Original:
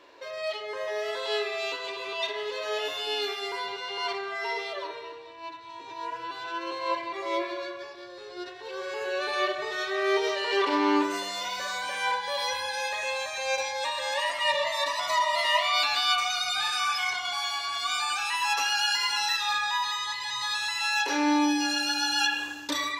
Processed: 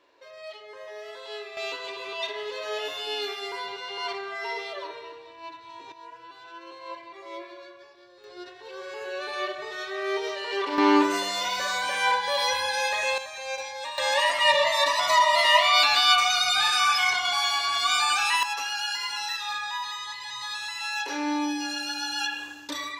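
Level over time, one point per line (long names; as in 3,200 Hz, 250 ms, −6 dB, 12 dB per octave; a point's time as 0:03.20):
−9 dB
from 0:01.57 −1 dB
from 0:05.92 −10 dB
from 0:08.24 −3.5 dB
from 0:10.78 +4.5 dB
from 0:13.18 −4.5 dB
from 0:13.98 +5.5 dB
from 0:18.43 −4 dB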